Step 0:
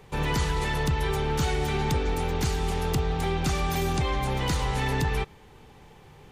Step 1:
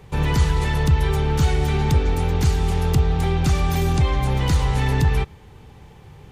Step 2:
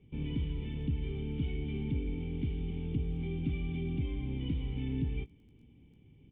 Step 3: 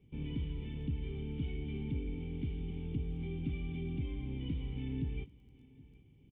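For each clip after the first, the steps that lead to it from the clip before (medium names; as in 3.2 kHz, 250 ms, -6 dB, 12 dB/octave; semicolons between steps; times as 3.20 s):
peaking EQ 82 Hz +9.5 dB 2 oct; trim +2 dB
cascade formant filter i; crackle 12 per s -57 dBFS; doubling 18 ms -11.5 dB; trim -4 dB
delay 774 ms -22.5 dB; trim -3.5 dB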